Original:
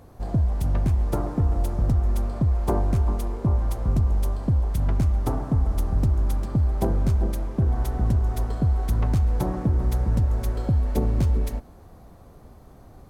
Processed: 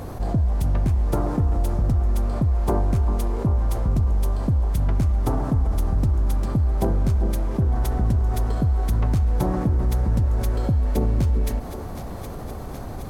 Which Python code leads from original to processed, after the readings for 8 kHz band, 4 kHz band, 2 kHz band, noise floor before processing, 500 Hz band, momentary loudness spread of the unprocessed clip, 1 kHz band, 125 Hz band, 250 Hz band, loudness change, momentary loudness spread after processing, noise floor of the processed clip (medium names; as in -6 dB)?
+3.0 dB, +3.0 dB, +3.0 dB, -48 dBFS, +2.5 dB, 3 LU, +3.0 dB, +1.5 dB, +2.0 dB, +1.5 dB, 5 LU, -33 dBFS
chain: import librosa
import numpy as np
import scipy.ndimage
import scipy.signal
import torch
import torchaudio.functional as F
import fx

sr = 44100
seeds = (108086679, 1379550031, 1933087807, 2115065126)

p1 = x + fx.echo_thinned(x, sr, ms=770, feedback_pct=74, hz=420.0, wet_db=-21, dry=0)
y = fx.env_flatten(p1, sr, amount_pct=50)